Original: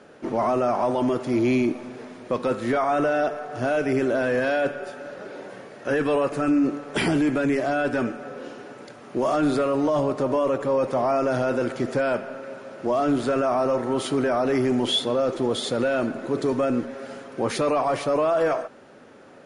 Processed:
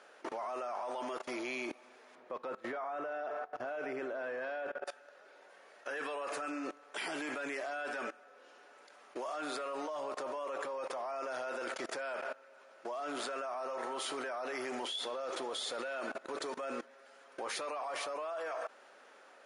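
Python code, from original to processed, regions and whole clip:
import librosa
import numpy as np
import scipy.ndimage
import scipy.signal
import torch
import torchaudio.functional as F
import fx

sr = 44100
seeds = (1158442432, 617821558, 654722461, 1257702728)

y = fx.chain(x, sr, fx.lowpass(hz=1100.0, slope=6),
    fx.low_shelf(hz=120.0, db=11.5), at=(2.15, 4.87))
y = scipy.signal.sosfilt(scipy.signal.butter(2, 750.0, 'highpass', fs=sr, output='sos'), y)
y = fx.level_steps(y, sr, step_db=20)
y = y * 10.0 ** (1.0 / 20.0)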